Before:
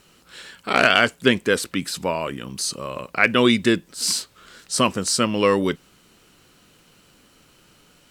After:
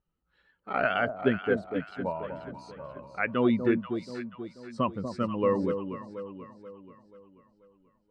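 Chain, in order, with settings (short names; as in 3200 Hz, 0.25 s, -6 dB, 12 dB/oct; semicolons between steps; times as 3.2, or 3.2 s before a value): per-bin expansion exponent 1.5; LPF 1400 Hz 12 dB/oct; on a send: echo with dull and thin repeats by turns 0.242 s, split 850 Hz, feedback 66%, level -6.5 dB; on the sum: gain -5 dB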